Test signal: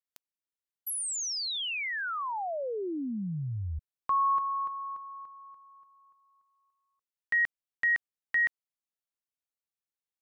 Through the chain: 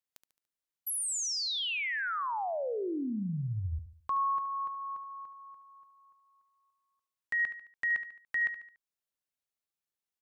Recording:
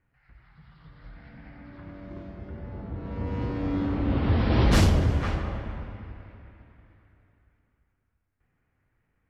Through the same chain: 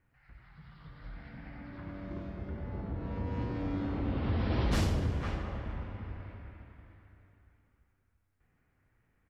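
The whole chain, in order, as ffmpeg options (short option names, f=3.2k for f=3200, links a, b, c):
-filter_complex "[0:a]acompressor=threshold=-31dB:ratio=2:attack=0.23:release=998:knee=1:detection=rms,asplit=2[a][b];[b]aecho=0:1:72|144|216|288:0.251|0.111|0.0486|0.0214[c];[a][c]amix=inputs=2:normalize=0"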